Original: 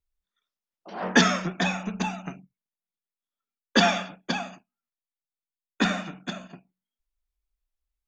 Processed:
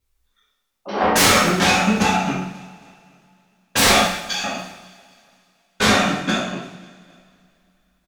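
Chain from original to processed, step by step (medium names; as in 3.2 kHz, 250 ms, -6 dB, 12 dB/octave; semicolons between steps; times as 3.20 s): 4.02–4.44 s: differentiator; sine folder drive 17 dB, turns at -5.5 dBFS; on a send: feedback delay 269 ms, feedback 49%, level -22 dB; on the sum: two-slope reverb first 0.69 s, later 3.2 s, from -26 dB, DRR -7 dB; trim -12 dB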